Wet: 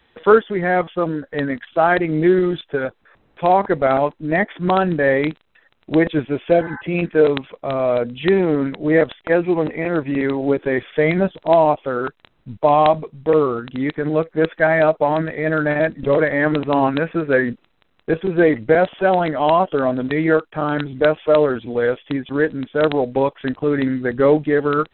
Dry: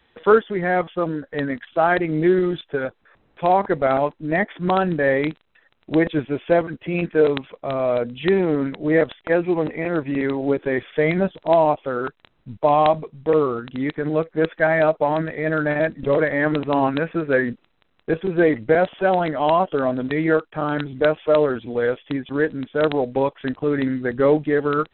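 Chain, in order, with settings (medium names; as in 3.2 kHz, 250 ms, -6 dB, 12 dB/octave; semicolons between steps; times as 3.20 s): spectral replace 6.54–6.79 s, 770–2100 Hz before; trim +2.5 dB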